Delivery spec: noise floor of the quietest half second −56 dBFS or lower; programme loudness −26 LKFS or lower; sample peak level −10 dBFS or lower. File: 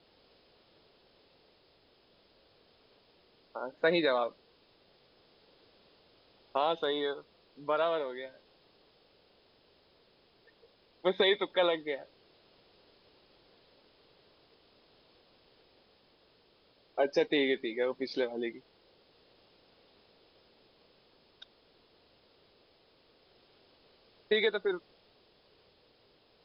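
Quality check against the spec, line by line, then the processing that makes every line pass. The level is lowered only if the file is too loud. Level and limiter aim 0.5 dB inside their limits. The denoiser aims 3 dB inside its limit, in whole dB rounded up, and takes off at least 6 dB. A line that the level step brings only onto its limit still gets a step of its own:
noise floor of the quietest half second −66 dBFS: in spec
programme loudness −31.5 LKFS: in spec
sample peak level −15.0 dBFS: in spec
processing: no processing needed

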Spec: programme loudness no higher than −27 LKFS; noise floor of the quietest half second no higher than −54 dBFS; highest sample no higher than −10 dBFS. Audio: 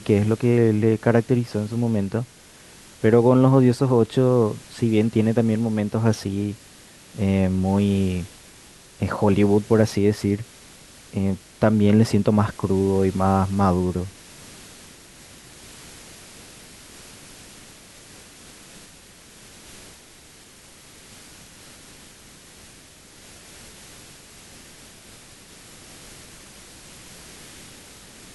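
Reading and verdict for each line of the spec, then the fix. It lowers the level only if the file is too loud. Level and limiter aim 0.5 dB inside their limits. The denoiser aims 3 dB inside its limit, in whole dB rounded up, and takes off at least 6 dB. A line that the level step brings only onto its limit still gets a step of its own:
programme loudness −20.5 LKFS: out of spec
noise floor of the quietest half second −48 dBFS: out of spec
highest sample −3.0 dBFS: out of spec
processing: level −7 dB
brickwall limiter −10.5 dBFS

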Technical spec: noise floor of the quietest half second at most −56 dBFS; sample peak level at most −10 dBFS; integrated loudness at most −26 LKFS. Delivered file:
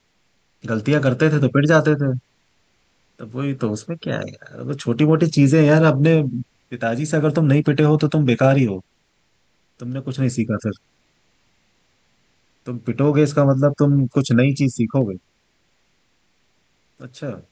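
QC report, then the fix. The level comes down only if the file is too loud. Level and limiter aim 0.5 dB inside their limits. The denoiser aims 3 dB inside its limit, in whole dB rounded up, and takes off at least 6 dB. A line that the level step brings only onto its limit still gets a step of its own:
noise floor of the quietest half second −64 dBFS: in spec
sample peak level −4.0 dBFS: out of spec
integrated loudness −18.5 LKFS: out of spec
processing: level −8 dB

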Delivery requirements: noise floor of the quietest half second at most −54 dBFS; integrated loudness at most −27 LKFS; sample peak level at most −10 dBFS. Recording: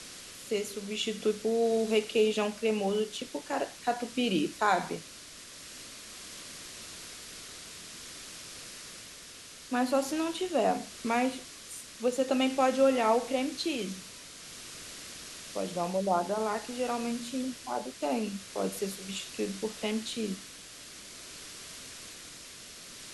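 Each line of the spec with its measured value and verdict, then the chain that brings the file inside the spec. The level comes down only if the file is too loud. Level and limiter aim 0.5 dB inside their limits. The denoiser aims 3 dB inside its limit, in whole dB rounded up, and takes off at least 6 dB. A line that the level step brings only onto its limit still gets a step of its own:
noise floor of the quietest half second −48 dBFS: out of spec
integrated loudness −31.5 LKFS: in spec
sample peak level −13.5 dBFS: in spec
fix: broadband denoise 9 dB, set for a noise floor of −48 dBFS

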